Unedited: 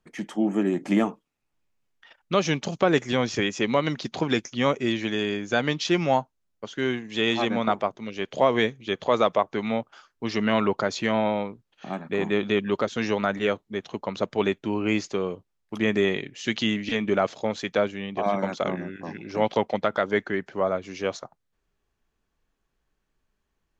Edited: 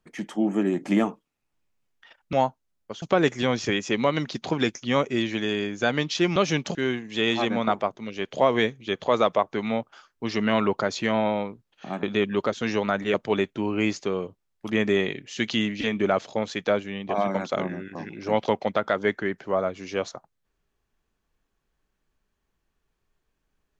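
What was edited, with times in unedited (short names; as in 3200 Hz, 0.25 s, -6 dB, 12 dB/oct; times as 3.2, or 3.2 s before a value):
2.33–2.72 swap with 6.06–6.75
12.03–12.38 cut
13.49–14.22 cut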